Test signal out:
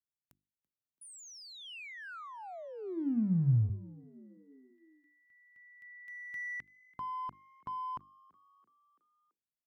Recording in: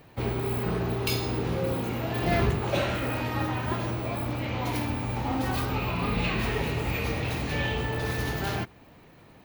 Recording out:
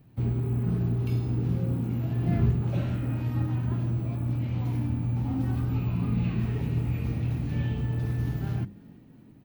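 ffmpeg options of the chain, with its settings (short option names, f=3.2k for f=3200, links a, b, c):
-filter_complex "[0:a]equalizer=f=125:t=o:w=1:g=8,equalizer=f=250:t=o:w=1:g=5,equalizer=f=500:t=o:w=1:g=-8,equalizer=f=1k:t=o:w=1:g=-6,equalizer=f=2k:t=o:w=1:g=-6,equalizer=f=4k:t=o:w=1:g=-5,equalizer=f=8k:t=o:w=1:g=-4,asplit=2[a][b];[b]aeval=exprs='sgn(val(0))*max(abs(val(0))-0.0141,0)':c=same,volume=-11.5dB[c];[a][c]amix=inputs=2:normalize=0,bandreject=f=50:t=h:w=6,bandreject=f=100:t=h:w=6,bandreject=f=150:t=h:w=6,bandreject=f=200:t=h:w=6,bandreject=f=250:t=h:w=6,bandreject=f=300:t=h:w=6,bandreject=f=350:t=h:w=6,acrossover=split=2700[d][e];[e]acompressor=threshold=-44dB:ratio=4:attack=1:release=60[f];[d][f]amix=inputs=2:normalize=0,lowshelf=f=400:g=4.5,asplit=5[g][h][i][j][k];[h]adelay=334,afreqshift=49,volume=-24dB[l];[i]adelay=668,afreqshift=98,volume=-28.7dB[m];[j]adelay=1002,afreqshift=147,volume=-33.5dB[n];[k]adelay=1336,afreqshift=196,volume=-38.2dB[o];[g][l][m][n][o]amix=inputs=5:normalize=0,volume=-8dB"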